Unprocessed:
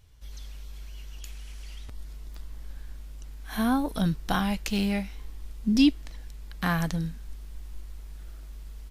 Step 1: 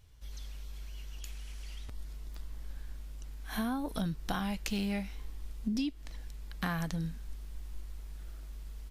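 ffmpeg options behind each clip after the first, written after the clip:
ffmpeg -i in.wav -af "acompressor=threshold=-27dB:ratio=16,volume=-2.5dB" out.wav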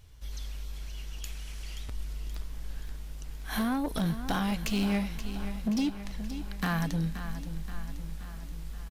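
ffmpeg -i in.wav -af "asoftclip=type=hard:threshold=-30dB,aecho=1:1:527|1054|1581|2108|2635|3162|3689:0.282|0.163|0.0948|0.055|0.0319|0.0185|0.0107,volume=5.5dB" out.wav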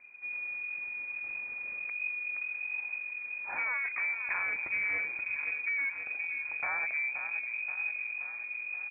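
ffmpeg -i in.wav -af "asoftclip=type=tanh:threshold=-29dB,lowpass=frequency=2100:width_type=q:width=0.5098,lowpass=frequency=2100:width_type=q:width=0.6013,lowpass=frequency=2100:width_type=q:width=0.9,lowpass=frequency=2100:width_type=q:width=2.563,afreqshift=-2500" out.wav

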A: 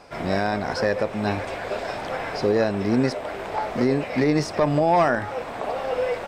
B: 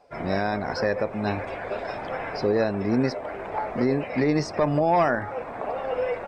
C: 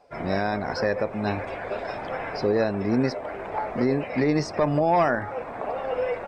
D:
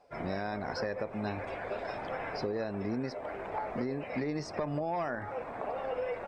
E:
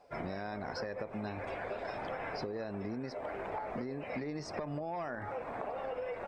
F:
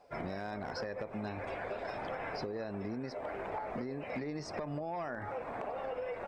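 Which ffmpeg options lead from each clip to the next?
ffmpeg -i in.wav -af "afftdn=noise_reduction=14:noise_floor=-40,volume=-2dB" out.wav
ffmpeg -i in.wav -af anull out.wav
ffmpeg -i in.wav -af "acompressor=threshold=-25dB:ratio=6,volume=-5.5dB" out.wav
ffmpeg -i in.wav -af "acompressor=threshold=-37dB:ratio=6,volume=1.5dB" out.wav
ffmpeg -i in.wav -af "volume=29.5dB,asoftclip=hard,volume=-29.5dB" out.wav

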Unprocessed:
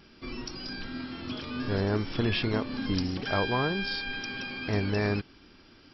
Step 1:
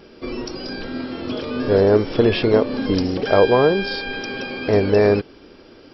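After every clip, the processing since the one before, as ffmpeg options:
ffmpeg -i in.wav -af "equalizer=frequency=490:width=1.2:gain=14.5,volume=5dB" out.wav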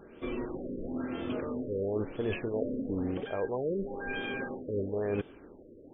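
ffmpeg -i in.wav -af "areverse,acompressor=threshold=-22dB:ratio=12,areverse,afftfilt=real='re*lt(b*sr/1024,580*pow(3700/580,0.5+0.5*sin(2*PI*1*pts/sr)))':imag='im*lt(b*sr/1024,580*pow(3700/580,0.5+0.5*sin(2*PI*1*pts/sr)))':win_size=1024:overlap=0.75,volume=-6.5dB" out.wav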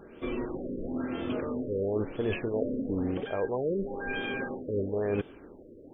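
ffmpeg -i in.wav -af "acontrast=32,volume=-3dB" out.wav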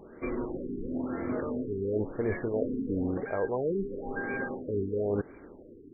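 ffmpeg -i in.wav -af "crystalizer=i=3:c=0,afftfilt=real='re*lt(b*sr/1024,440*pow(2400/440,0.5+0.5*sin(2*PI*0.98*pts/sr)))':imag='im*lt(b*sr/1024,440*pow(2400/440,0.5+0.5*sin(2*PI*0.98*pts/sr)))':win_size=1024:overlap=0.75" out.wav

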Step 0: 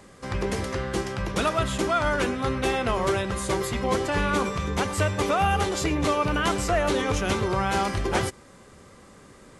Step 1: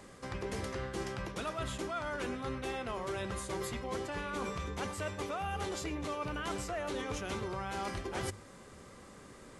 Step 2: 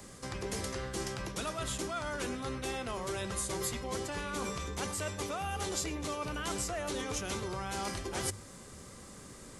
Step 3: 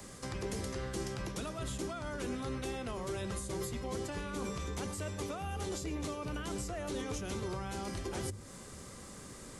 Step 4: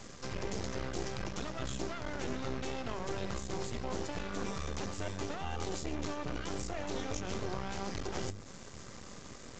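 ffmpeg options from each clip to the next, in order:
ffmpeg -i in.wav -af "bandreject=frequency=50:width_type=h:width=6,bandreject=frequency=100:width_type=h:width=6,bandreject=frequency=150:width_type=h:width=6,bandreject=frequency=200:width_type=h:width=6,areverse,acompressor=threshold=-32dB:ratio=6,areverse,volume=-3dB" out.wav
ffmpeg -i in.wav -filter_complex "[0:a]bass=frequency=250:gain=5,treble=frequency=4000:gain=10,acrossover=split=280|1400|2500[link_01][link_02][link_03][link_04];[link_01]asoftclip=type=tanh:threshold=-38.5dB[link_05];[link_05][link_02][link_03][link_04]amix=inputs=4:normalize=0" out.wav
ffmpeg -i in.wav -filter_complex "[0:a]acrossover=split=480[link_01][link_02];[link_02]acompressor=threshold=-43dB:ratio=6[link_03];[link_01][link_03]amix=inputs=2:normalize=0,volume=1dB" out.wav
ffmpeg -i in.wav -af "aeval=exprs='max(val(0),0)':channel_layout=same,volume=4.5dB" -ar 16000 -c:a libvorbis -b:a 64k out.ogg

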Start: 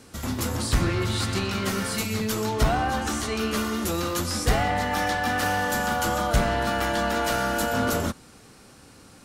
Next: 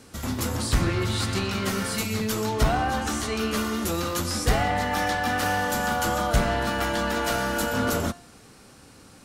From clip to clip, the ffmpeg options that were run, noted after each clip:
ffmpeg -i in.wav -af "bandreject=frequency=349.4:width_type=h:width=4,bandreject=frequency=698.8:width_type=h:width=4,bandreject=frequency=1048.2:width_type=h:width=4,bandreject=frequency=1397.6:width_type=h:width=4,bandreject=frequency=1747:width_type=h:width=4,bandreject=frequency=2096.4:width_type=h:width=4,bandreject=frequency=2445.8:width_type=h:width=4,bandreject=frequency=2795.2:width_type=h:width=4,bandreject=frequency=3144.6:width_type=h:width=4,bandreject=frequency=3494:width_type=h:width=4,bandreject=frequency=3843.4:width_type=h:width=4,bandreject=frequency=4192.8:width_type=h:width=4,bandreject=frequency=4542.2:width_type=h:width=4,bandreject=frequency=4891.6:width_type=h:width=4,bandreject=frequency=5241:width_type=h:width=4,bandreject=frequency=5590.4:width_type=h:width=4,bandreject=frequency=5939.8:width_type=h:width=4,bandreject=frequency=6289.2:width_type=h:width=4,bandreject=frequency=6638.6:width_type=h:width=4,bandreject=frequency=6988:width_type=h:width=4,bandreject=frequency=7337.4:width_type=h:width=4,bandreject=frequency=7686.8:width_type=h:width=4,bandreject=frequency=8036.2:width_type=h:width=4,bandreject=frequency=8385.6:width_type=h:width=4,bandreject=frequency=8735:width_type=h:width=4,bandreject=frequency=9084.4:width_type=h:width=4,bandreject=frequency=9433.8:width_type=h:width=4,bandreject=frequency=9783.2:width_type=h:width=4,bandreject=frequency=10132.6:width_type=h:width=4,bandreject=frequency=10482:width_type=h:width=4" out.wav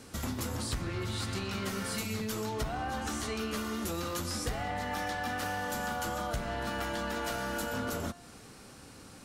ffmpeg -i in.wav -af "acompressor=threshold=-31dB:ratio=6,volume=-1dB" out.wav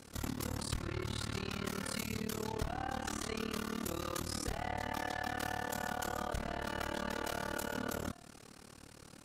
ffmpeg -i in.wav -af "tremolo=f=37:d=1" out.wav

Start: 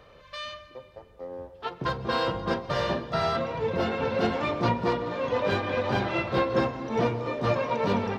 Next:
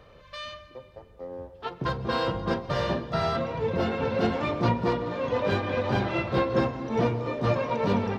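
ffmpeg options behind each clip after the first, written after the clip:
ffmpeg -i in.wav -af "lowshelf=frequency=320:gain=5,volume=-1.5dB" out.wav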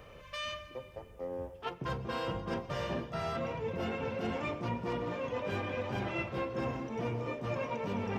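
ffmpeg -i in.wav -af "areverse,acompressor=threshold=-33dB:ratio=6,areverse,aexciter=amount=1.6:drive=1.6:freq=2200" out.wav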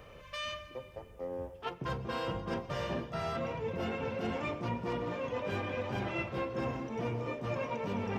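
ffmpeg -i in.wav -af anull out.wav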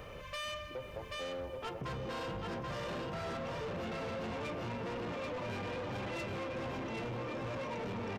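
ffmpeg -i in.wav -filter_complex "[0:a]asplit=2[link_01][link_02];[link_02]aecho=0:1:783|1566|2349|3132:0.631|0.164|0.0427|0.0111[link_03];[link_01][link_03]amix=inputs=2:normalize=0,asoftclip=type=tanh:threshold=-37.5dB,acompressor=threshold=-43dB:ratio=6,volume=5dB" out.wav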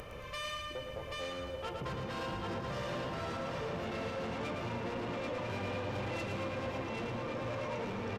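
ffmpeg -i in.wav -af "aresample=32000,aresample=44100,acompressor=mode=upward:threshold=-45dB:ratio=2.5,aecho=1:1:112|224|336|448|560|672|784:0.531|0.292|0.161|0.0883|0.0486|0.0267|0.0147" out.wav

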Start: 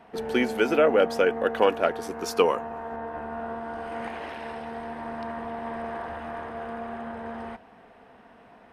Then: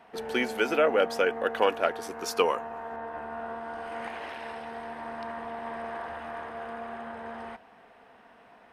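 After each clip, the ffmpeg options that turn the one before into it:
ffmpeg -i in.wav -af "lowshelf=frequency=450:gain=-8.5" out.wav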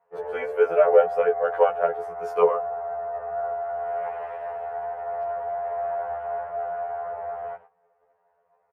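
ffmpeg -i in.wav -af "firequalizer=gain_entry='entry(190,0);entry(270,-26);entry(430,10);entry(3900,-21);entry(9100,-16)':delay=0.05:min_phase=1,agate=range=-17dB:threshold=-45dB:ratio=16:detection=peak,afftfilt=real='re*2*eq(mod(b,4),0)':imag='im*2*eq(mod(b,4),0)':win_size=2048:overlap=0.75" out.wav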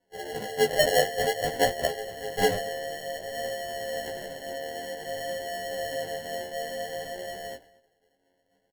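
ffmpeg -i in.wav -filter_complex "[0:a]acrusher=samples=36:mix=1:aa=0.000001,flanger=delay=16:depth=6.1:speed=0.54,asplit=2[link_01][link_02];[link_02]adelay=233.2,volume=-22dB,highshelf=frequency=4000:gain=-5.25[link_03];[link_01][link_03]amix=inputs=2:normalize=0,volume=-1.5dB" out.wav

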